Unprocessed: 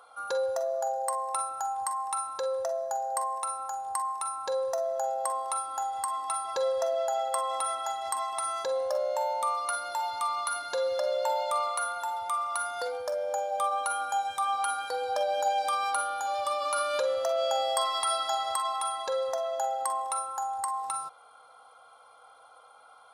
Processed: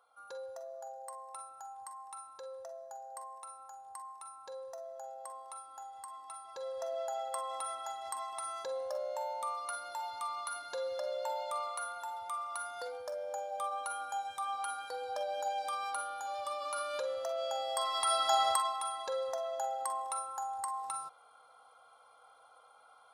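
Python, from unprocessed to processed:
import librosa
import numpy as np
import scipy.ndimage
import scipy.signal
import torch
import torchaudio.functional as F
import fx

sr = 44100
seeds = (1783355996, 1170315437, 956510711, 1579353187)

y = fx.gain(x, sr, db=fx.line((6.51, -15.5), (6.96, -8.5), (17.66, -8.5), (18.45, 3.0), (18.76, -6.0)))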